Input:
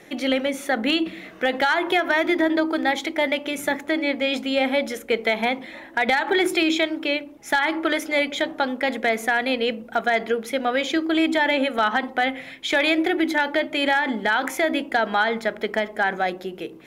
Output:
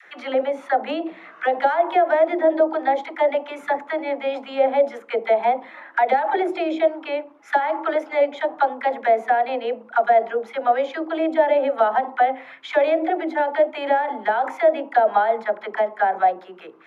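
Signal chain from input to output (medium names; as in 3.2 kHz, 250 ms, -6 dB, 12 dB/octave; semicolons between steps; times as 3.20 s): phase dispersion lows, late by 58 ms, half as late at 510 Hz; auto-wah 630–1500 Hz, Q 2.8, down, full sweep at -16.5 dBFS; trim +8.5 dB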